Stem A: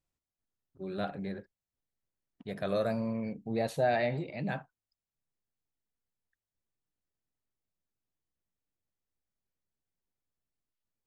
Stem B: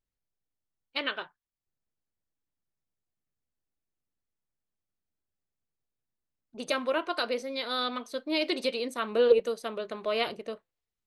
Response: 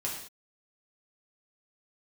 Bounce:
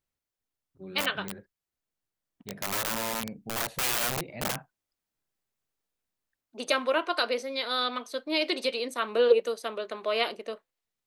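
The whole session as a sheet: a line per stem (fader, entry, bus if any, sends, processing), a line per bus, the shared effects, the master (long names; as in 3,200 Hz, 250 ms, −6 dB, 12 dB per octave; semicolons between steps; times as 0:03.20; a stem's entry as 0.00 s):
−2.0 dB, 0.00 s, no send, bass and treble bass +6 dB, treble −13 dB; wrap-around overflow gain 25 dB; high-shelf EQ 8,200 Hz +10.5 dB
+3.0 dB, 0.00 s, no send, high-pass filter 210 Hz 24 dB per octave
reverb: not used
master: low-shelf EQ 380 Hz −6 dB; speech leveller within 3 dB 2 s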